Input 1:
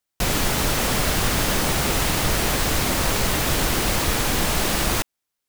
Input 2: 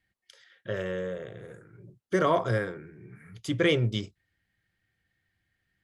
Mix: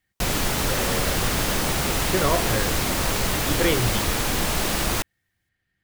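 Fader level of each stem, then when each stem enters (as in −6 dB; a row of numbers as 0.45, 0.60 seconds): −2.0, +0.5 decibels; 0.00, 0.00 seconds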